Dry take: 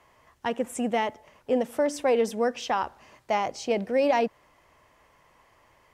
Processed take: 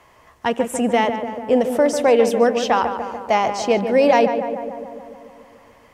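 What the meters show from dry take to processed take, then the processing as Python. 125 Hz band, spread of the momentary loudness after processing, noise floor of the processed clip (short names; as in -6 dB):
n/a, 13 LU, -52 dBFS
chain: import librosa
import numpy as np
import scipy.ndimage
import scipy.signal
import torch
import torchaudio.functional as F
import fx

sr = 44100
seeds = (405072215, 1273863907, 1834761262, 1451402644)

y = fx.echo_filtered(x, sr, ms=146, feedback_pct=70, hz=2100.0, wet_db=-8)
y = y * 10.0 ** (8.0 / 20.0)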